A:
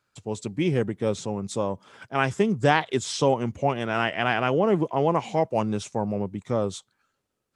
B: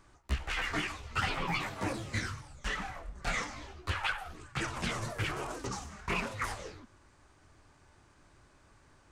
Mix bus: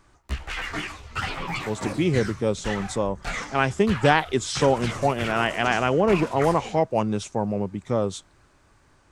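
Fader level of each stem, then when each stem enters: +1.5 dB, +3.0 dB; 1.40 s, 0.00 s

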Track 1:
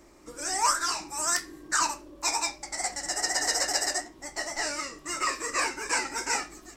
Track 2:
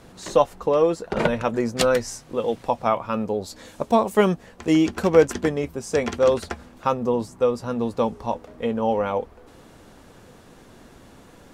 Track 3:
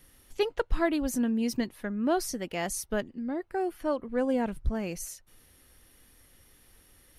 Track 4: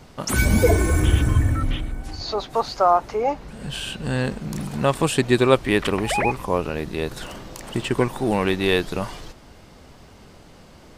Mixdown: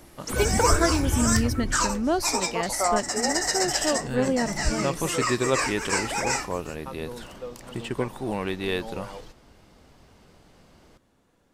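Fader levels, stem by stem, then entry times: +1.0 dB, -17.5 dB, +2.5 dB, -8.0 dB; 0.00 s, 0.00 s, 0.00 s, 0.00 s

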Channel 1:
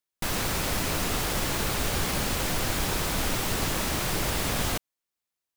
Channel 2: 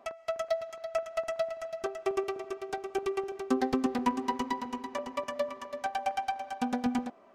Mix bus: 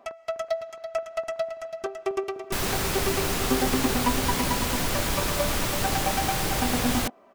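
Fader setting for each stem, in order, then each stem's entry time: +1.0 dB, +2.5 dB; 2.30 s, 0.00 s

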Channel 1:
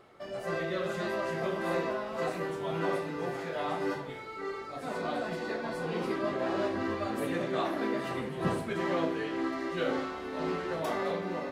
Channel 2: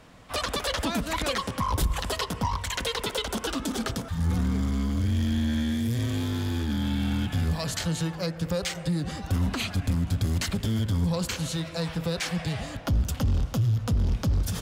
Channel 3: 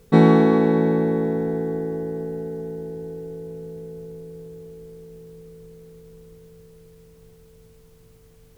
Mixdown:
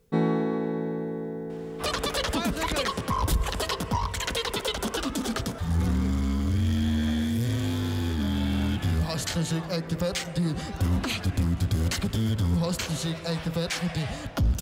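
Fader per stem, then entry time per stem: -13.0 dB, +0.5 dB, -11.0 dB; 2.00 s, 1.50 s, 0.00 s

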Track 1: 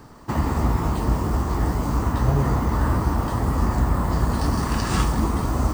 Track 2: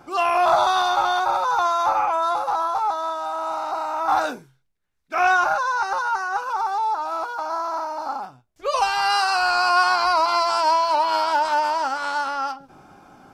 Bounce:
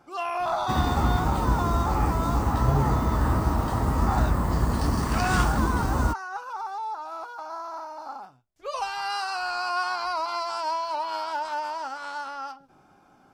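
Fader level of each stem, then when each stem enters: -2.5 dB, -9.5 dB; 0.40 s, 0.00 s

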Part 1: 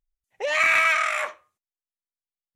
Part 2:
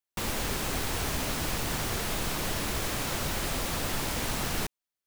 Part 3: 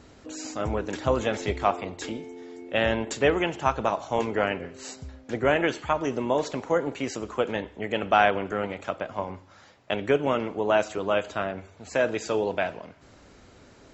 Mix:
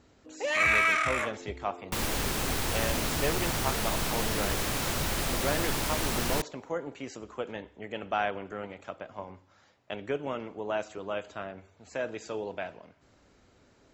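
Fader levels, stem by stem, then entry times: -4.5 dB, +1.0 dB, -9.5 dB; 0.00 s, 1.75 s, 0.00 s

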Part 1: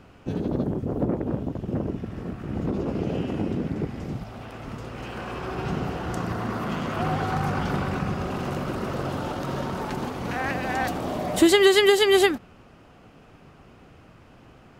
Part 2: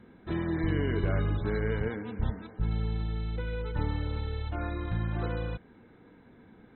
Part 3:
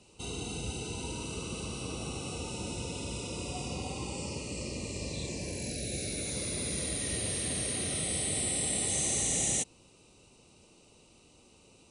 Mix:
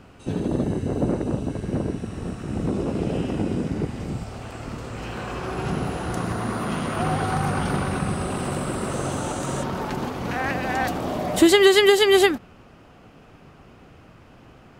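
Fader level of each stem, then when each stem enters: +2.0 dB, -10.5 dB, -9.5 dB; 0.00 s, 0.00 s, 0.00 s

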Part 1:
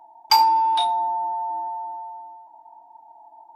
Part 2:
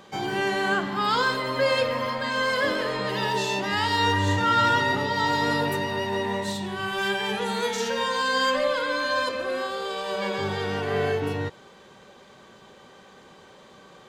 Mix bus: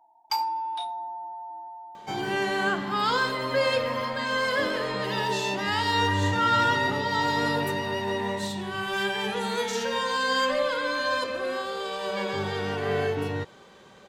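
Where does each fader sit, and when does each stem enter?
-11.5 dB, -1.5 dB; 0.00 s, 1.95 s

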